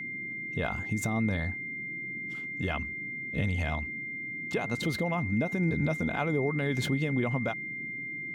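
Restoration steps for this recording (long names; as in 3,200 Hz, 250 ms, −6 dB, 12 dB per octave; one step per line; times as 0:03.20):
notch filter 2,100 Hz, Q 30
noise reduction from a noise print 30 dB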